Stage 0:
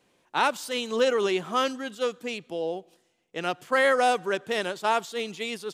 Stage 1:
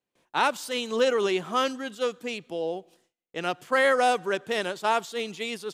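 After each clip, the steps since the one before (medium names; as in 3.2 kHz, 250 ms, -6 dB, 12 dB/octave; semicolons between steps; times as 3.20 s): gate with hold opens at -56 dBFS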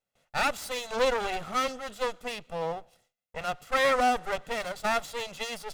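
comb filter that takes the minimum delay 1.5 ms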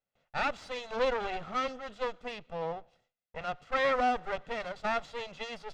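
distance through air 150 m; trim -3 dB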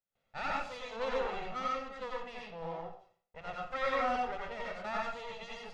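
reverberation RT60 0.50 s, pre-delay 82 ms, DRR -3.5 dB; trim -8.5 dB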